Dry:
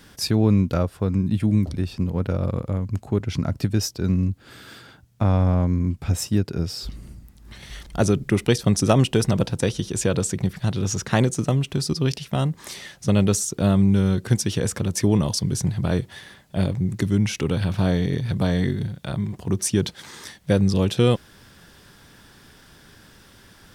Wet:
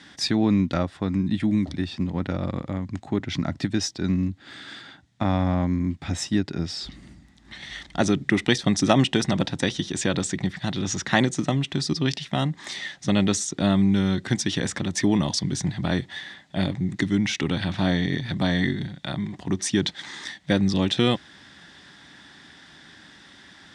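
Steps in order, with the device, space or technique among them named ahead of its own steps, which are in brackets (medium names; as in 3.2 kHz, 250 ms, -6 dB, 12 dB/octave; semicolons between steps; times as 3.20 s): car door speaker (cabinet simulation 95–7900 Hz, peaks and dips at 110 Hz -8 dB, 290 Hz +5 dB, 460 Hz -8 dB, 790 Hz +4 dB, 1.9 kHz +10 dB, 3.6 kHz +8 dB); trim -1 dB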